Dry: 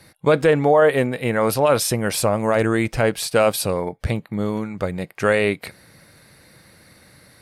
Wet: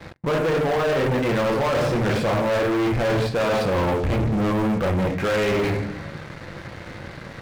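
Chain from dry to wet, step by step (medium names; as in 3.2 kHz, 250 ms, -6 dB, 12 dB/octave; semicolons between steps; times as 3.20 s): low-pass 2 kHz 12 dB/octave; reverberation RT60 0.55 s, pre-delay 6 ms, DRR 0 dB; reverse; compression 16:1, threshold -22 dBFS, peak gain reduction 15.5 dB; reverse; waveshaping leveller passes 5; trim -5 dB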